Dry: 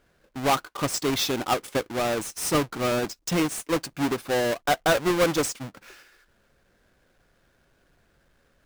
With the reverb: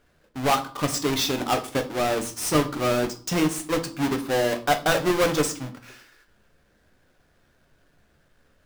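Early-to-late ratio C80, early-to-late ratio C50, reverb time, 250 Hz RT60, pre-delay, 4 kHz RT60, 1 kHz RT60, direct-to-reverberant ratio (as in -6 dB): 18.0 dB, 14.0 dB, 0.45 s, 0.70 s, 7 ms, 0.35 s, 0.40 s, 6.0 dB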